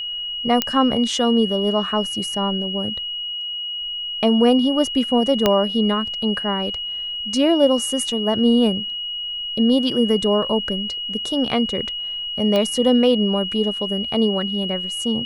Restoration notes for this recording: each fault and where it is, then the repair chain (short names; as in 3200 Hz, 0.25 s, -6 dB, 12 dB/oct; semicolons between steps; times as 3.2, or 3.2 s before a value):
tone 2900 Hz -25 dBFS
0.62 pop -2 dBFS
5.46 pop -2 dBFS
12.56 pop -9 dBFS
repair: de-click; notch 2900 Hz, Q 30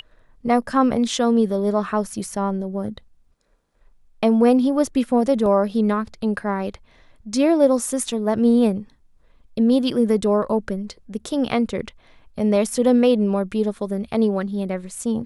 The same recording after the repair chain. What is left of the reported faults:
0.62 pop
5.46 pop